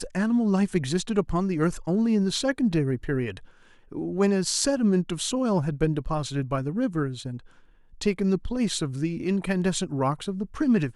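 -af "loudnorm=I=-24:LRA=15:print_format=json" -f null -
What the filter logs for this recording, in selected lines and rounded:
"input_i" : "-26.0",
"input_tp" : "-7.8",
"input_lra" : "3.6",
"input_thresh" : "-36.2",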